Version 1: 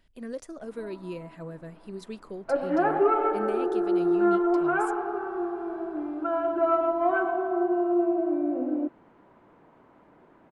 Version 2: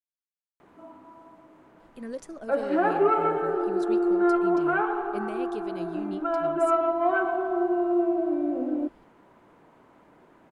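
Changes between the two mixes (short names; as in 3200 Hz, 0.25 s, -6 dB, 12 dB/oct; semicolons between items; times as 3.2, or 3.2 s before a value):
speech: entry +1.80 s; background: remove LPF 2300 Hz 6 dB/oct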